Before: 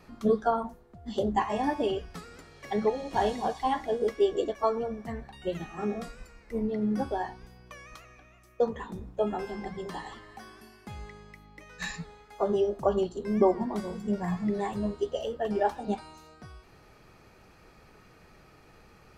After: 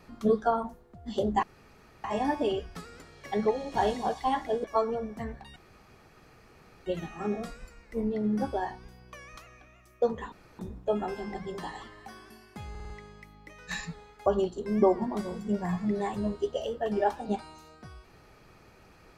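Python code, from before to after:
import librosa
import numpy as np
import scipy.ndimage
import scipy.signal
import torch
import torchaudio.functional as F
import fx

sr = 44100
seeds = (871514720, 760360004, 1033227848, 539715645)

y = fx.edit(x, sr, fx.insert_room_tone(at_s=1.43, length_s=0.61),
    fx.cut(start_s=4.03, length_s=0.49),
    fx.insert_room_tone(at_s=5.44, length_s=1.3),
    fx.insert_room_tone(at_s=8.9, length_s=0.27),
    fx.stutter(start_s=11.01, slice_s=0.05, count=5),
    fx.cut(start_s=12.37, length_s=0.48), tone=tone)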